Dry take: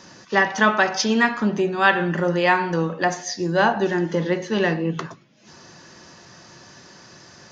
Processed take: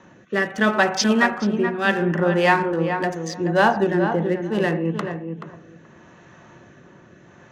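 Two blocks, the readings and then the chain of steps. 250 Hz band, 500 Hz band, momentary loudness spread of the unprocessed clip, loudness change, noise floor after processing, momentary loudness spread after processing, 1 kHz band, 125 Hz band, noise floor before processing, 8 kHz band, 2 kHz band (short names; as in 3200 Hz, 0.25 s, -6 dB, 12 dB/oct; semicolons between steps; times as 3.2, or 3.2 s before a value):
+1.5 dB, +1.0 dB, 6 LU, 0.0 dB, -50 dBFS, 9 LU, -0.5 dB, +1.5 dB, -48 dBFS, n/a, -1.0 dB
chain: Wiener smoothing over 9 samples; rotary speaker horn 0.75 Hz; darkening echo 0.429 s, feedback 15%, low-pass 1800 Hz, level -7 dB; gain +2 dB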